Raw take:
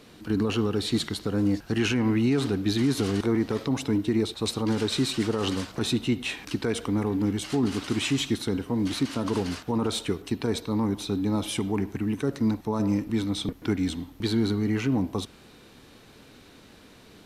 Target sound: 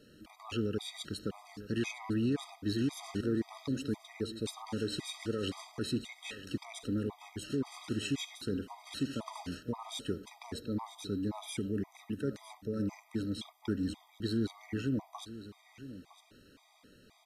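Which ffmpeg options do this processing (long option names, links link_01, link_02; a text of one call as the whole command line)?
ffmpeg -i in.wav -af "aecho=1:1:958:0.188,afftfilt=real='re*gt(sin(2*PI*1.9*pts/sr)*(1-2*mod(floor(b*sr/1024/640),2)),0)':imag='im*gt(sin(2*PI*1.9*pts/sr)*(1-2*mod(floor(b*sr/1024/640),2)),0)':win_size=1024:overlap=0.75,volume=-7.5dB" out.wav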